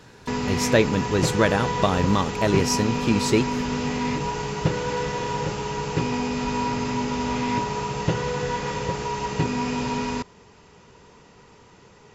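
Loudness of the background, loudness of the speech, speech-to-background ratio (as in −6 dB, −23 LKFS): −26.5 LKFS, −23.0 LKFS, 3.5 dB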